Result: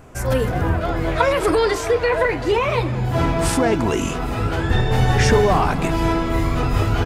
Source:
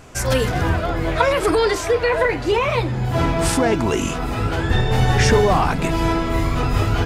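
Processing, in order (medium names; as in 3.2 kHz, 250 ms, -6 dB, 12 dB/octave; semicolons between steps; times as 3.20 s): peaking EQ 4.8 kHz -10 dB 2.4 oct, from 0.81 s -2 dB; speakerphone echo 210 ms, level -15 dB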